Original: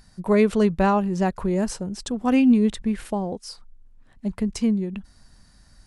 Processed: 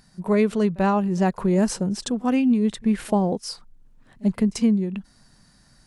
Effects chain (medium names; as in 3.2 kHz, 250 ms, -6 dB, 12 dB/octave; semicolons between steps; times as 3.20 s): resonant low shelf 100 Hz -7.5 dB, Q 1.5; pre-echo 40 ms -23.5 dB; gain riding within 5 dB 0.5 s